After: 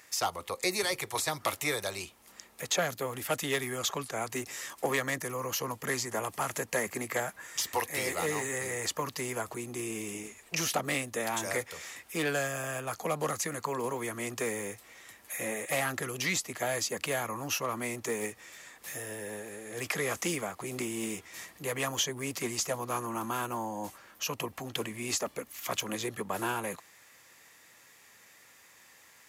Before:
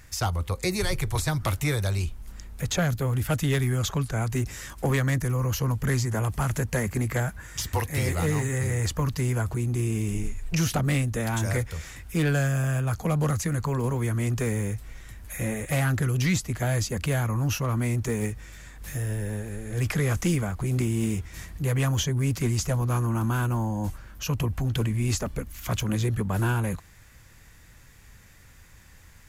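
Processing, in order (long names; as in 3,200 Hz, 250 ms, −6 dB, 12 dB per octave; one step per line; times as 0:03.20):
high-pass filter 410 Hz 12 dB per octave
notch filter 1,500 Hz, Q 10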